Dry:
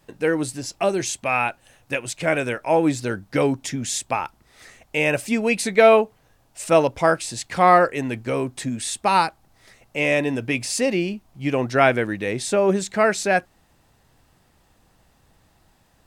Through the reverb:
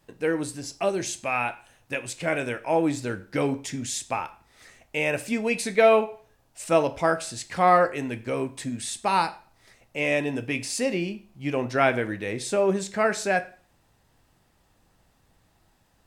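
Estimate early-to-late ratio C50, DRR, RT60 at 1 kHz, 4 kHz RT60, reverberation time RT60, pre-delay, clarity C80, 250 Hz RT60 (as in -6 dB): 17.0 dB, 10.0 dB, 0.45 s, 0.40 s, 0.40 s, 14 ms, 20.5 dB, 0.40 s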